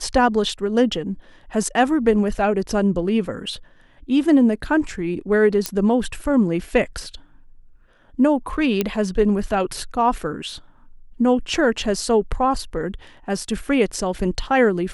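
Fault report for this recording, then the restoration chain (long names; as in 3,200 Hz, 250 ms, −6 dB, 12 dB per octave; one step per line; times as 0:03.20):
0:05.66: click −5 dBFS
0:08.81: click −6 dBFS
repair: click removal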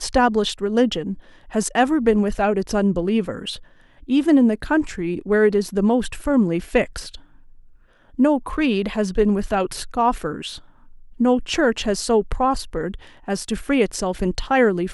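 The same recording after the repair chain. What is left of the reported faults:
none of them is left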